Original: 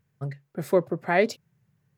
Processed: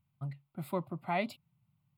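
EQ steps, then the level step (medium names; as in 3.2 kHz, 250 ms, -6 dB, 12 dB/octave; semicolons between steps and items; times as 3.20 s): static phaser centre 1.7 kHz, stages 6; -5.0 dB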